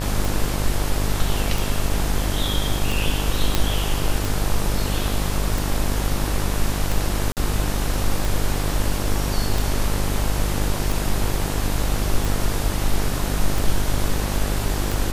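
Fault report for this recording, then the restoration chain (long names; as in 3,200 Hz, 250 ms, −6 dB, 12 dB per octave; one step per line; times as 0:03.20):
mains buzz 50 Hz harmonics 37 −25 dBFS
scratch tick 45 rpm
0:03.55: click
0:07.32–0:07.37: drop-out 48 ms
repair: click removal
hum removal 50 Hz, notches 37
repair the gap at 0:07.32, 48 ms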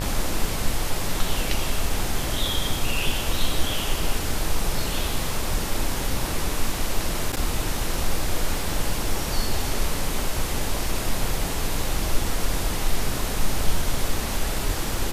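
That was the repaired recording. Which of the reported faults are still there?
none of them is left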